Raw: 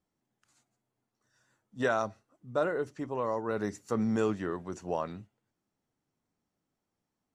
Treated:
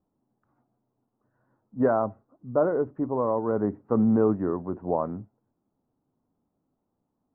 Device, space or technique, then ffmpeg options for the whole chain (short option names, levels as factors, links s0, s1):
under water: -af "lowpass=f=1100:w=0.5412,lowpass=f=1100:w=1.3066,equalizer=f=260:t=o:w=0.38:g=4.5,volume=2.11"